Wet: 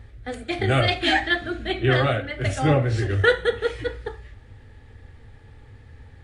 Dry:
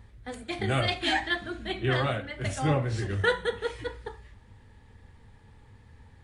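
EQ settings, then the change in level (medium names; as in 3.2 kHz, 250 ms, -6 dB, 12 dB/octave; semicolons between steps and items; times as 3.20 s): peaking EQ 190 Hz -14.5 dB 0.28 oct; peaking EQ 980 Hz -13.5 dB 0.23 oct; treble shelf 5 kHz -8.5 dB; +8.0 dB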